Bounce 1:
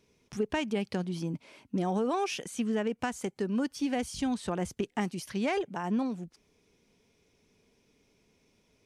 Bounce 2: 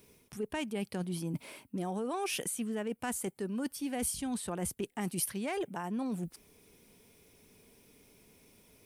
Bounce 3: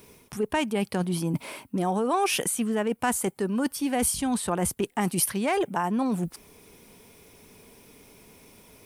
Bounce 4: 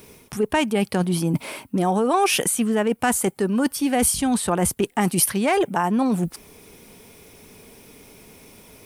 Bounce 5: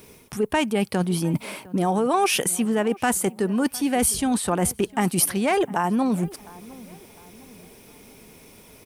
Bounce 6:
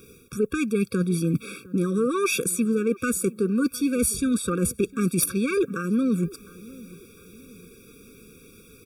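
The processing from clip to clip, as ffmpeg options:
-af "areverse,acompressor=threshold=-39dB:ratio=6,areverse,aexciter=amount=6.3:drive=4.5:freq=8.6k,volume=5.5dB"
-af "equalizer=f=1k:t=o:w=1.2:g=5,volume=8.5dB"
-af "bandreject=f=1k:w=22,volume=5.5dB"
-filter_complex "[0:a]asplit=2[a][b];[b]adelay=706,lowpass=f=2.3k:p=1,volume=-21dB,asplit=2[c][d];[d]adelay=706,lowpass=f=2.3k:p=1,volume=0.45,asplit=2[e][f];[f]adelay=706,lowpass=f=2.3k:p=1,volume=0.45[g];[a][c][e][g]amix=inputs=4:normalize=0,volume=-1.5dB"
-af "aeval=exprs='(mod(2.66*val(0)+1,2)-1)/2.66':c=same,afftfilt=real='re*eq(mod(floor(b*sr/1024/550),2),0)':imag='im*eq(mod(floor(b*sr/1024/550),2),0)':win_size=1024:overlap=0.75"

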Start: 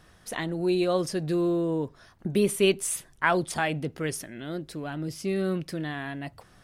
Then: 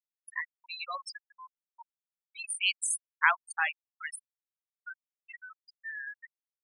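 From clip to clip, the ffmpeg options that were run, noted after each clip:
-af "highpass=f=1k:w=0.5412,highpass=f=1k:w=1.3066,afftfilt=real='re*gte(hypot(re,im),0.0562)':imag='im*gte(hypot(re,im),0.0562)':win_size=1024:overlap=0.75,volume=2dB"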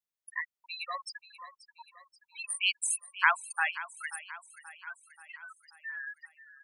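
-af "aecho=1:1:532|1064|1596|2128|2660:0.168|0.0923|0.0508|0.0279|0.0154"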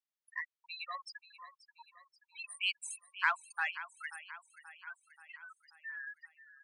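-filter_complex "[0:a]asplit=2[a][b];[b]asoftclip=type=tanh:threshold=-24dB,volume=-6dB[c];[a][c]amix=inputs=2:normalize=0,highpass=730,lowpass=6k,volume=-7.5dB"

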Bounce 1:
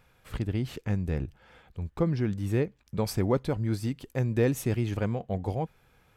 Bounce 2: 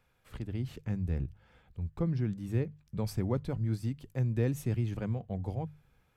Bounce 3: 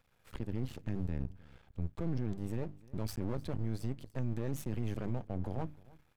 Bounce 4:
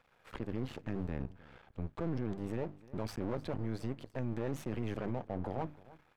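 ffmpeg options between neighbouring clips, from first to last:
-filter_complex "[0:a]bandreject=f=50:t=h:w=6,bandreject=f=100:t=h:w=6,bandreject=f=150:t=h:w=6,acrossover=split=200[a][b];[a]dynaudnorm=f=370:g=3:m=8.5dB[c];[c][b]amix=inputs=2:normalize=0,volume=-9dB"
-af "alimiter=level_in=4.5dB:limit=-24dB:level=0:latency=1:release=12,volume=-4.5dB,aeval=exprs='max(val(0),0)':c=same,aecho=1:1:305:0.075,volume=3dB"
-filter_complex "[0:a]asplit=2[a][b];[b]highpass=f=720:p=1,volume=16dB,asoftclip=type=tanh:threshold=-24.5dB[c];[a][c]amix=inputs=2:normalize=0,lowpass=f=1.4k:p=1,volume=-6dB"

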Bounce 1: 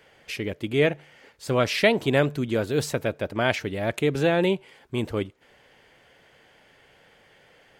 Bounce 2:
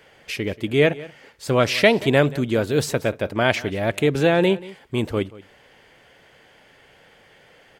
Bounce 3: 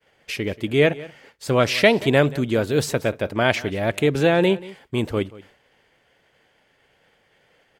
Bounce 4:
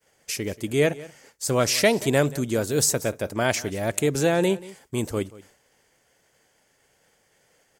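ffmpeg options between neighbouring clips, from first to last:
-af "aecho=1:1:182:0.106,volume=4dB"
-af "agate=range=-33dB:threshold=-45dB:ratio=3:detection=peak"
-af "highshelf=f=4.7k:t=q:w=1.5:g=12,volume=-3.5dB"

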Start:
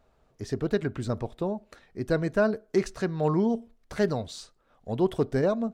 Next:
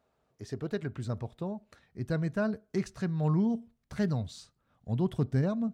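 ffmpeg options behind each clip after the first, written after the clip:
-af "highpass=110,asubboost=boost=8.5:cutoff=150,volume=-6.5dB"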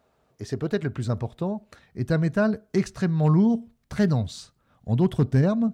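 -af "asoftclip=type=hard:threshold=-19dB,volume=8dB"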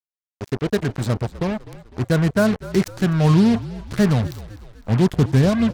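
-filter_complex "[0:a]acrusher=bits=4:mix=0:aa=0.5,asplit=6[a][b][c][d][e][f];[b]adelay=252,afreqshift=-50,volume=-17dB[g];[c]adelay=504,afreqshift=-100,volume=-22.7dB[h];[d]adelay=756,afreqshift=-150,volume=-28.4dB[i];[e]adelay=1008,afreqshift=-200,volume=-34dB[j];[f]adelay=1260,afreqshift=-250,volume=-39.7dB[k];[a][g][h][i][j][k]amix=inputs=6:normalize=0,volume=4.5dB"

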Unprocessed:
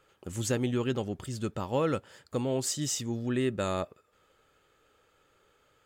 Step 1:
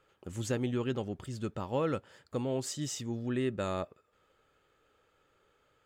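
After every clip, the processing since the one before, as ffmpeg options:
-af "highshelf=f=5.4k:g=-7,volume=-3dB"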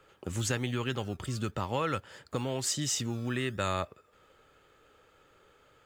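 -filter_complex "[0:a]acrossover=split=100|940[a][b][c];[a]acrusher=samples=28:mix=1:aa=0.000001:lfo=1:lforange=16.8:lforate=1[d];[b]acompressor=threshold=-41dB:ratio=6[e];[d][e][c]amix=inputs=3:normalize=0,volume=8dB"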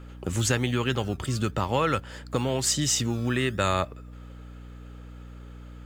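-af "aeval=exprs='val(0)+0.00398*(sin(2*PI*60*n/s)+sin(2*PI*2*60*n/s)/2+sin(2*PI*3*60*n/s)/3+sin(2*PI*4*60*n/s)/4+sin(2*PI*5*60*n/s)/5)':c=same,volume=6.5dB"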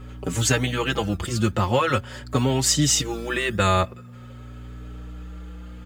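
-filter_complex "[0:a]asplit=2[a][b];[b]adelay=4.9,afreqshift=0.44[c];[a][c]amix=inputs=2:normalize=1,volume=7.5dB"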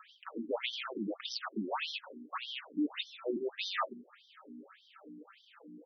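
-af "asoftclip=type=tanh:threshold=-22dB,afftfilt=real='re*between(b*sr/1024,250*pow(4400/250,0.5+0.5*sin(2*PI*1.7*pts/sr))/1.41,250*pow(4400/250,0.5+0.5*sin(2*PI*1.7*pts/sr))*1.41)':imag='im*between(b*sr/1024,250*pow(4400/250,0.5+0.5*sin(2*PI*1.7*pts/sr))/1.41,250*pow(4400/250,0.5+0.5*sin(2*PI*1.7*pts/sr))*1.41)':win_size=1024:overlap=0.75"

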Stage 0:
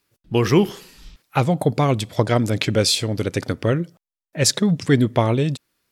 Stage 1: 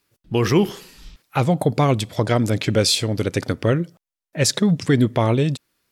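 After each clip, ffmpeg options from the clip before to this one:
-af "alimiter=level_in=7.5dB:limit=-1dB:release=50:level=0:latency=1,volume=-6.5dB"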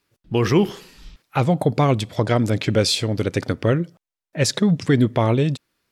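-af "highshelf=f=7.2k:g=-7.5"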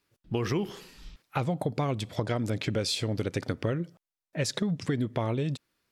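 -af "acompressor=threshold=-21dB:ratio=6,volume=-4.5dB"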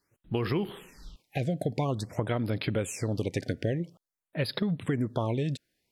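-af "afftfilt=real='re*(1-between(b*sr/1024,1000*pow(7500/1000,0.5+0.5*sin(2*PI*0.49*pts/sr))/1.41,1000*pow(7500/1000,0.5+0.5*sin(2*PI*0.49*pts/sr))*1.41))':imag='im*(1-between(b*sr/1024,1000*pow(7500/1000,0.5+0.5*sin(2*PI*0.49*pts/sr))/1.41,1000*pow(7500/1000,0.5+0.5*sin(2*PI*0.49*pts/sr))*1.41))':win_size=1024:overlap=0.75"

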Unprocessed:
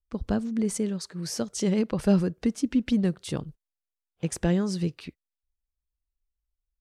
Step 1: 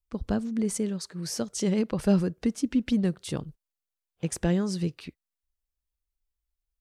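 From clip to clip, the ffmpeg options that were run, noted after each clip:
-af "highshelf=f=9.4k:g=3.5,volume=-1dB"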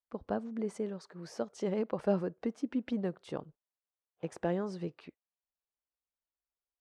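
-af "bandpass=f=730:t=q:w=0.98:csg=0"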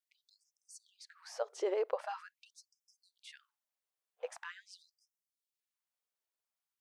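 -af "afftfilt=real='re*gte(b*sr/1024,310*pow(5100/310,0.5+0.5*sin(2*PI*0.44*pts/sr)))':imag='im*gte(b*sr/1024,310*pow(5100/310,0.5+0.5*sin(2*PI*0.44*pts/sr)))':win_size=1024:overlap=0.75,volume=1.5dB"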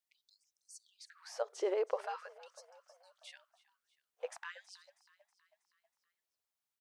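-filter_complex "[0:a]asplit=6[a][b][c][d][e][f];[b]adelay=321,afreqshift=34,volume=-20dB[g];[c]adelay=642,afreqshift=68,volume=-24.9dB[h];[d]adelay=963,afreqshift=102,volume=-29.8dB[i];[e]adelay=1284,afreqshift=136,volume=-34.6dB[j];[f]adelay=1605,afreqshift=170,volume=-39.5dB[k];[a][g][h][i][j][k]amix=inputs=6:normalize=0"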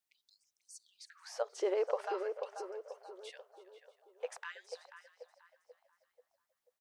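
-filter_complex "[0:a]asplit=2[a][b];[b]adelay=487,lowpass=f=1k:p=1,volume=-5dB,asplit=2[c][d];[d]adelay=487,lowpass=f=1k:p=1,volume=0.5,asplit=2[e][f];[f]adelay=487,lowpass=f=1k:p=1,volume=0.5,asplit=2[g][h];[h]adelay=487,lowpass=f=1k:p=1,volume=0.5,asplit=2[i][j];[j]adelay=487,lowpass=f=1k:p=1,volume=0.5,asplit=2[k][l];[l]adelay=487,lowpass=f=1k:p=1,volume=0.5[m];[a][c][e][g][i][k][m]amix=inputs=7:normalize=0,volume=1dB"

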